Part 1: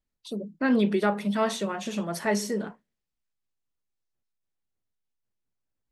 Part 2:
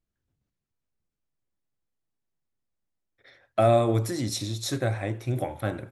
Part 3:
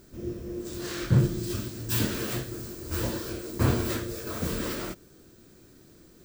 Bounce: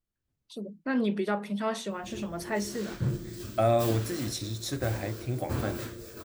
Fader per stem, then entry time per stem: -5.0, -4.0, -8.5 dB; 0.25, 0.00, 1.90 s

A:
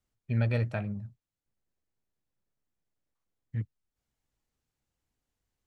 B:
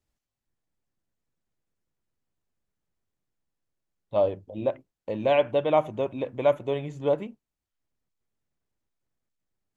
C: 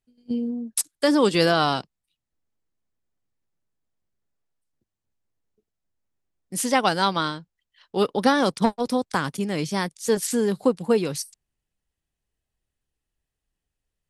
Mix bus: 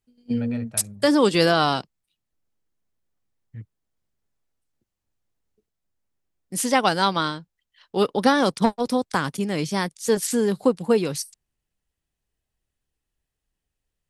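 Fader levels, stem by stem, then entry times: -5.5 dB, off, +1.0 dB; 0.00 s, off, 0.00 s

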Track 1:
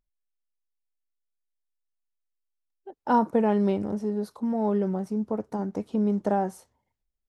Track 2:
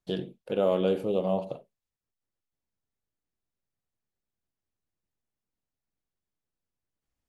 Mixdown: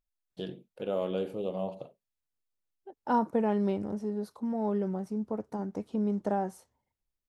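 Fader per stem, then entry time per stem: -5.0, -6.5 dB; 0.00, 0.30 s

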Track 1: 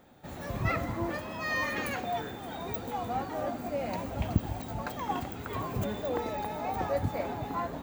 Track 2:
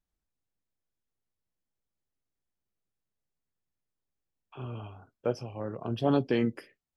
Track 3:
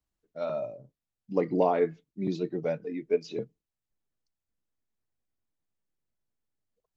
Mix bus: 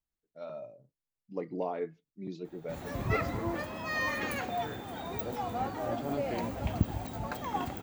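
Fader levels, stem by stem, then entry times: -1.0, -11.5, -10.0 dB; 2.45, 0.00, 0.00 s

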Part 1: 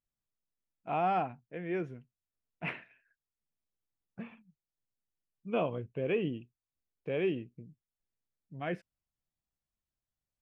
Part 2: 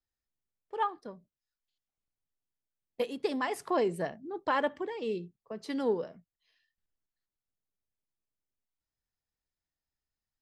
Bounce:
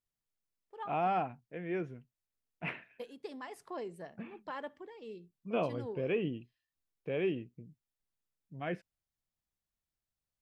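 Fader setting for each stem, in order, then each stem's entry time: -1.5, -13.0 dB; 0.00, 0.00 s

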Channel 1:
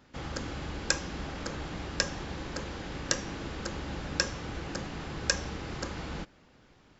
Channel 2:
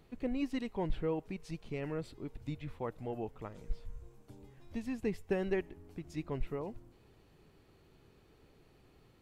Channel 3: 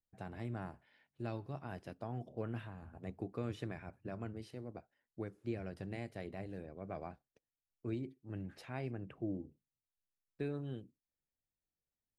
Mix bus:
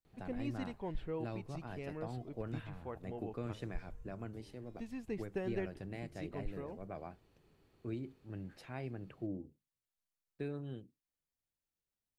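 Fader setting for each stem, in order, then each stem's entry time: off, -6.0 dB, -1.5 dB; off, 0.05 s, 0.00 s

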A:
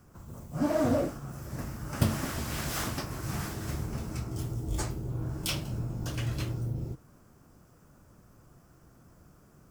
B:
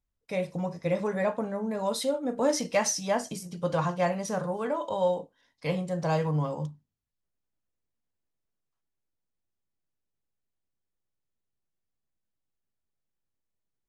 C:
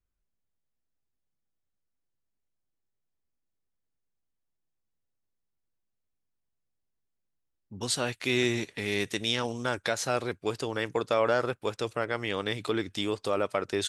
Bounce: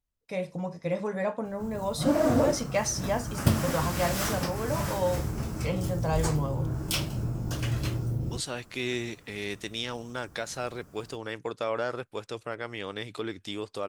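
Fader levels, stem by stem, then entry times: +3.0, -2.0, -5.0 dB; 1.45, 0.00, 0.50 s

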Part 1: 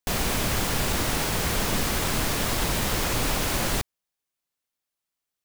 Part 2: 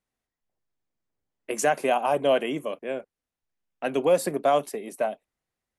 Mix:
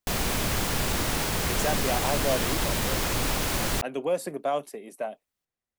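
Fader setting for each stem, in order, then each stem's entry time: -1.5, -6.0 dB; 0.00, 0.00 s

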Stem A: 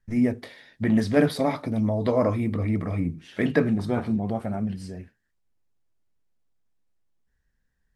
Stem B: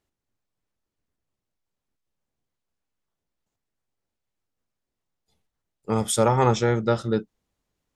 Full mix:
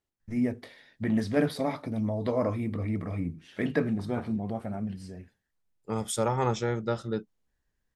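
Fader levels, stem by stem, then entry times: -5.5, -7.5 dB; 0.20, 0.00 s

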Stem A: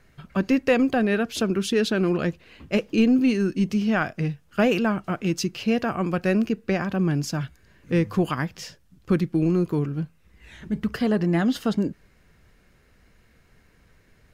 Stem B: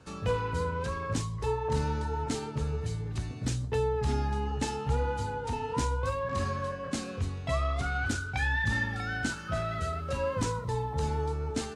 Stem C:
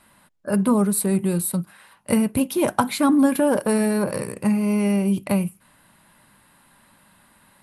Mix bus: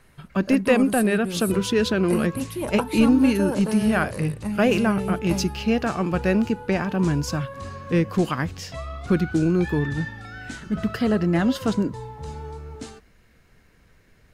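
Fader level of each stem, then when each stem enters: +1.0, -4.5, -8.5 dB; 0.00, 1.25, 0.00 s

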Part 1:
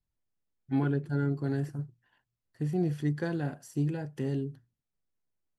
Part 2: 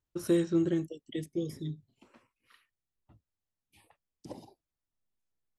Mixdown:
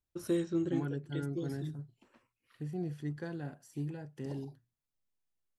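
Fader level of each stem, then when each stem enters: -8.5, -5.0 dB; 0.00, 0.00 s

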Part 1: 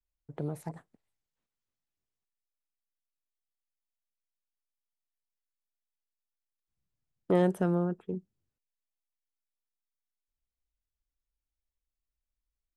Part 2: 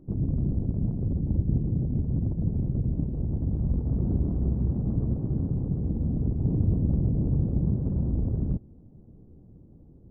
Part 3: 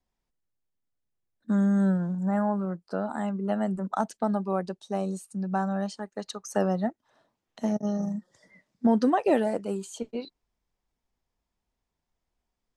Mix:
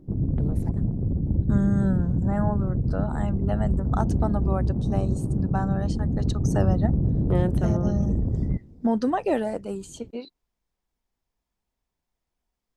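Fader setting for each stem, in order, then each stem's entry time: -1.5, +2.0, -1.0 dB; 0.00, 0.00, 0.00 s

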